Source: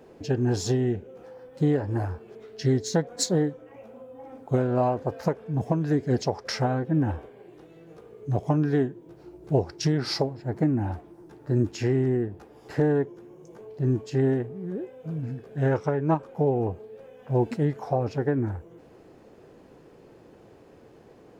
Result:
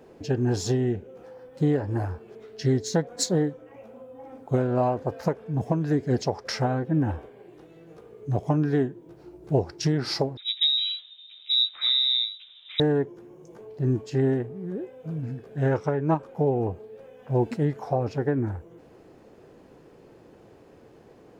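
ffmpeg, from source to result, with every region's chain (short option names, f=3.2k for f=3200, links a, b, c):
-filter_complex "[0:a]asettb=1/sr,asplit=3[a][b][c];[a]atrim=end=10.374[d];[b]atrim=start=10.37:end=12.8,asetpts=PTS-STARTPTS,afade=t=in:d=0.004:c=qsin,afade=t=out:st=2.426:d=0.004:c=qsin,acrossover=split=2900[e][f];[f]adelay=80[g];[e][g]amix=inputs=2:normalize=0,atrim=end_sample=107163,lowpass=f=3.4k:t=q:w=0.5098,lowpass=f=3.4k:t=q:w=0.6013,lowpass=f=3.4k:t=q:w=0.9,lowpass=f=3.4k:t=q:w=2.563,afreqshift=-4000[h];[c]atrim=start=12.796[i];[d][h]acrossfade=d=0.004:c1=hsin:c2=qsin[j];[j][i]acrossfade=d=0.004:c1=qsin:c2=hsin"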